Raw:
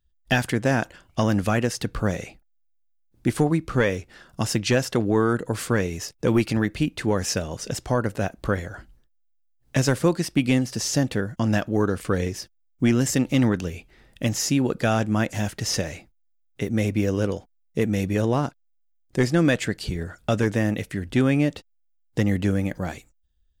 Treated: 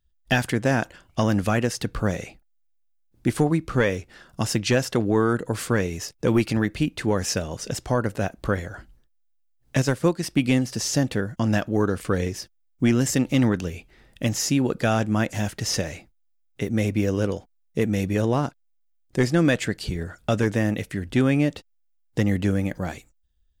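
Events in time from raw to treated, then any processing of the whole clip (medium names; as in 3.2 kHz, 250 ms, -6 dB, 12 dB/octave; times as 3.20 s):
9.82–10.23 s: upward expansion, over -30 dBFS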